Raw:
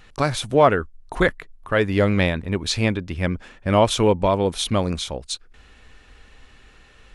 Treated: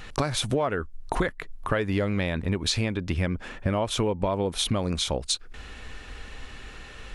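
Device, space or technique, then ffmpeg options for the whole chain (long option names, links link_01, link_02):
serial compression, leveller first: -filter_complex "[0:a]asettb=1/sr,asplit=3[link_01][link_02][link_03];[link_01]atrim=end=3.334[link_04];[link_02]atrim=start=3.33:end=4.76,asetpts=PTS-STARTPTS,afade=type=in:duration=0.004:curve=qsin,afade=type=out:start_time=1.426:duration=0.004:curve=qsin,equalizer=frequency=5700:width_type=o:width=2.2:gain=-3.5[link_05];[link_03]atrim=start=4.756[link_06];[link_04][link_05]acrossfade=duration=0.004:curve1=hsin:curve2=qsin[link_07];[link_07][link_06]acrossfade=duration=0.004:curve1=qsin:curve2=hsin,acompressor=threshold=-21dB:ratio=2.5,acompressor=threshold=-32dB:ratio=4,volume=8dB"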